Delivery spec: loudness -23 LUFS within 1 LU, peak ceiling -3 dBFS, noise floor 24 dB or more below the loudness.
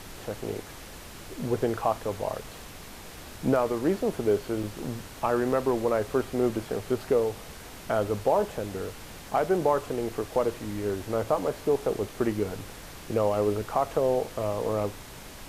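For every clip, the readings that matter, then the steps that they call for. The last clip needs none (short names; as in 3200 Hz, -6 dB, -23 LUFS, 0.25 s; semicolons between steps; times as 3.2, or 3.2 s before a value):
dropouts 2; longest dropout 4.2 ms; noise floor -44 dBFS; noise floor target -53 dBFS; loudness -28.5 LUFS; peak -12.5 dBFS; loudness target -23.0 LUFS
-> interpolate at 4.63/5.52, 4.2 ms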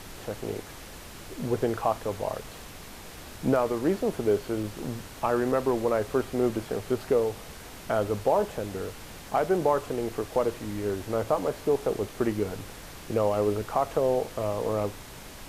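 dropouts 0; noise floor -44 dBFS; noise floor target -53 dBFS
-> noise print and reduce 9 dB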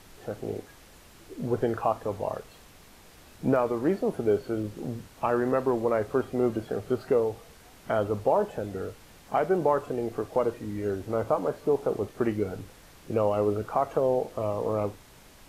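noise floor -53 dBFS; loudness -28.5 LUFS; peak -12.5 dBFS; loudness target -23.0 LUFS
-> gain +5.5 dB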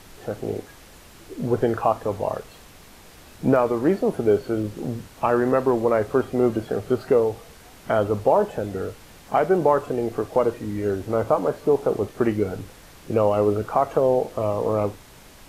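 loudness -23.0 LUFS; peak -7.0 dBFS; noise floor -47 dBFS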